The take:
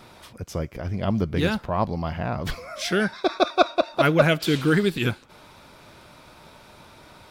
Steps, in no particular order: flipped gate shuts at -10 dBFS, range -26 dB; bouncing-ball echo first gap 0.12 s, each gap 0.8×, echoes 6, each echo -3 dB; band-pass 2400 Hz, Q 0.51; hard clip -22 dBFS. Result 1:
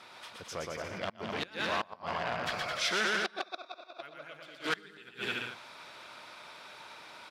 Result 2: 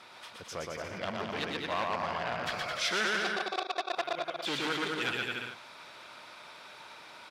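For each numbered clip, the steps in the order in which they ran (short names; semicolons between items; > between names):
bouncing-ball echo > flipped gate > hard clip > band-pass; flipped gate > bouncing-ball echo > hard clip > band-pass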